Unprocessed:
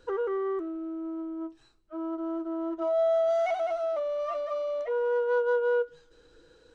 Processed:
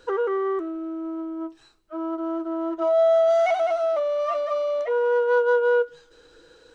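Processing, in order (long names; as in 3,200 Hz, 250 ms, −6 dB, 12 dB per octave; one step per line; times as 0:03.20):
low-shelf EQ 300 Hz −8.5 dB
level +8 dB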